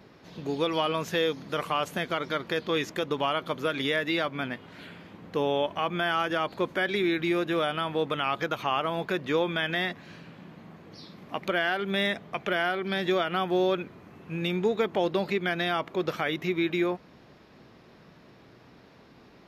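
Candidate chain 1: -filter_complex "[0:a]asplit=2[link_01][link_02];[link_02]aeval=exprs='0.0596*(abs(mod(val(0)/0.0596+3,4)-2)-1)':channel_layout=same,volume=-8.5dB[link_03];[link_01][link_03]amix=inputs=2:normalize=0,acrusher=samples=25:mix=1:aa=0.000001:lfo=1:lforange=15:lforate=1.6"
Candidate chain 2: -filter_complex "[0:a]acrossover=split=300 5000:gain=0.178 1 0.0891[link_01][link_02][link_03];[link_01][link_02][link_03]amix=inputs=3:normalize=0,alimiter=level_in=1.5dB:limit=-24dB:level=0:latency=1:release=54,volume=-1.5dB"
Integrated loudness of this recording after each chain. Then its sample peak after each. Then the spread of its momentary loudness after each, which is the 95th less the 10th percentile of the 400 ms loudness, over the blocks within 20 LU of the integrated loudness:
−27.0, −35.5 LKFS; −15.0, −25.5 dBFS; 15, 12 LU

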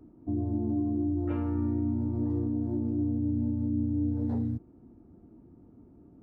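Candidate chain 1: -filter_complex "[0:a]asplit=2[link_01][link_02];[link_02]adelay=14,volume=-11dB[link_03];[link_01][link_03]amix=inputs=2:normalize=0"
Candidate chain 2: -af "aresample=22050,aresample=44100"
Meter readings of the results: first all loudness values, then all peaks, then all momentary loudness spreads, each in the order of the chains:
−29.0, −30.5 LKFS; −19.0, −21.0 dBFS; 3, 3 LU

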